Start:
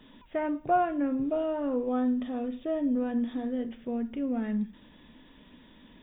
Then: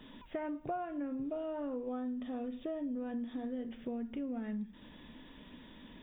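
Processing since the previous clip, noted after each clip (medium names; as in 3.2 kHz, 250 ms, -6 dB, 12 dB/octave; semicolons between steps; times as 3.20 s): compression 5:1, threshold -38 dBFS, peak gain reduction 16 dB; trim +1 dB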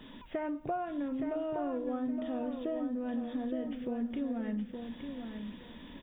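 feedback delay 868 ms, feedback 24%, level -6.5 dB; trim +3 dB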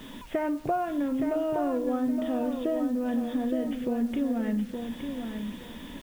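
bit crusher 10-bit; trim +7 dB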